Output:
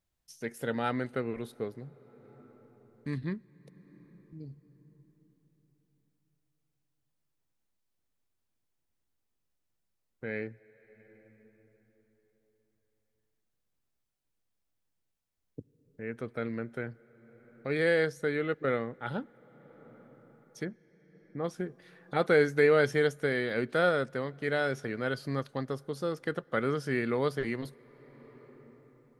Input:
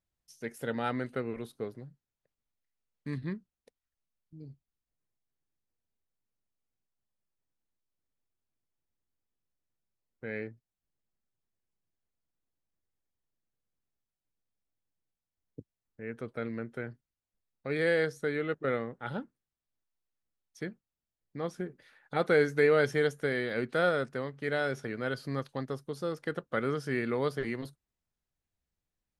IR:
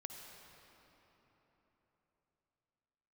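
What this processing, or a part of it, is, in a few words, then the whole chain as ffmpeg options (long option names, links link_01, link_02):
ducked reverb: -filter_complex "[0:a]asplit=3[link_01][link_02][link_03];[link_01]afade=type=out:start_time=20.64:duration=0.02[link_04];[link_02]lowpass=1600,afade=type=in:start_time=20.64:duration=0.02,afade=type=out:start_time=21.43:duration=0.02[link_05];[link_03]afade=type=in:start_time=21.43:duration=0.02[link_06];[link_04][link_05][link_06]amix=inputs=3:normalize=0,asplit=3[link_07][link_08][link_09];[1:a]atrim=start_sample=2205[link_10];[link_08][link_10]afir=irnorm=-1:irlink=0[link_11];[link_09]apad=whole_len=1287523[link_12];[link_11][link_12]sidechaincompress=threshold=-48dB:ratio=8:attack=16:release=617,volume=-2.5dB[link_13];[link_07][link_13]amix=inputs=2:normalize=0,volume=1dB"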